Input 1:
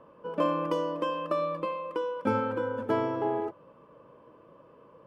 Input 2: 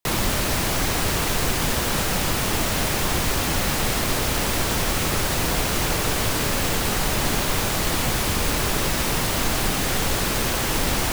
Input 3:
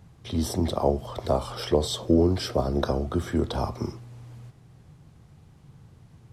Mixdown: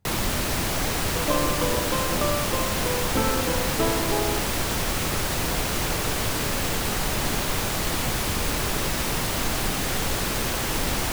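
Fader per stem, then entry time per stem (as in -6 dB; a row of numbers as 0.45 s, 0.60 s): +1.5 dB, -3.0 dB, -15.0 dB; 0.90 s, 0.00 s, 0.00 s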